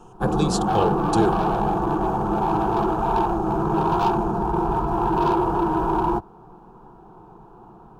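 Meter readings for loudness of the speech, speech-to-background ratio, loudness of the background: −25.5 LKFS, −3.0 dB, −22.5 LKFS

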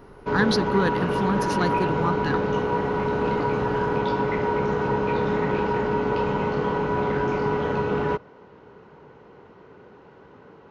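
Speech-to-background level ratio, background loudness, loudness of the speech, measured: −2.0 dB, −24.5 LKFS, −26.5 LKFS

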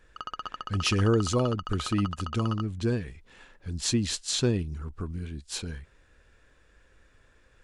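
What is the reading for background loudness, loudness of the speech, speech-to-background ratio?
−38.5 LKFS, −29.0 LKFS, 9.5 dB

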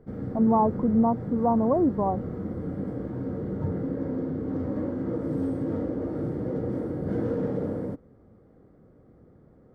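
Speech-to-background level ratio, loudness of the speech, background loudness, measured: 7.0 dB, −24.5 LKFS, −31.5 LKFS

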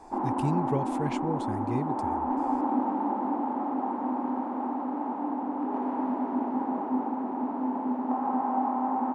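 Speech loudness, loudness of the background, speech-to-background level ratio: −33.5 LKFS, −30.0 LKFS, −3.5 dB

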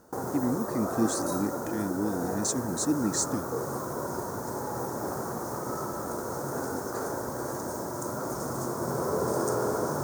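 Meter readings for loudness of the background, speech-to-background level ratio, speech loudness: −32.5 LKFS, 2.0 dB, −30.5 LKFS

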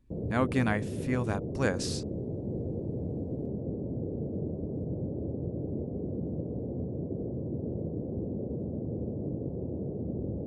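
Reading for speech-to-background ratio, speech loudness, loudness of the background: 4.0 dB, −31.5 LKFS, −35.5 LKFS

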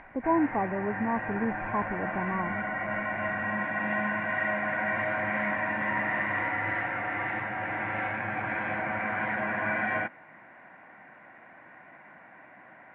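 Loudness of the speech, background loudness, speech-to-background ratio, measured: −31.0 LKFS, −30.5 LKFS, −0.5 dB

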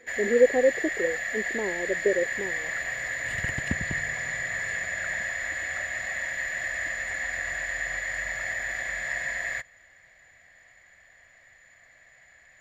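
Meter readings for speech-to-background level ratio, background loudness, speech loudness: 3.5 dB, −29.5 LKFS, −26.0 LKFS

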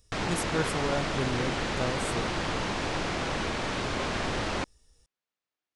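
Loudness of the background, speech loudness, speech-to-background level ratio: −31.0 LKFS, −34.0 LKFS, −3.0 dB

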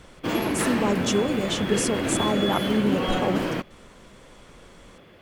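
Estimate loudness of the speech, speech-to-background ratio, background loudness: −26.5 LKFS, 0.0 dB, −26.5 LKFS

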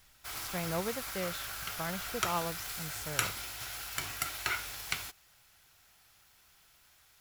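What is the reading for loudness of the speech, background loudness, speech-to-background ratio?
−39.5 LKFS, −36.5 LKFS, −3.0 dB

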